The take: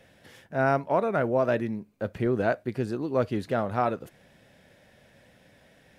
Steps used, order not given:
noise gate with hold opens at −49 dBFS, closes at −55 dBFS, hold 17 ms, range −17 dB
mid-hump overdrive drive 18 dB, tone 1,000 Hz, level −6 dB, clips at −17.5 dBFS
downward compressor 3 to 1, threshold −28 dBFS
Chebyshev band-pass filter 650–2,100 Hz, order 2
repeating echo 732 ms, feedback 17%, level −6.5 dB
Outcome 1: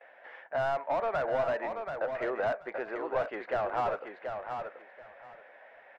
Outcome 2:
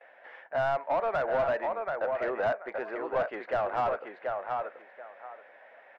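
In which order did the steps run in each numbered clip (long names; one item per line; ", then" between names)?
noise gate with hold, then Chebyshev band-pass filter, then mid-hump overdrive, then downward compressor, then repeating echo
noise gate with hold, then Chebyshev band-pass filter, then downward compressor, then repeating echo, then mid-hump overdrive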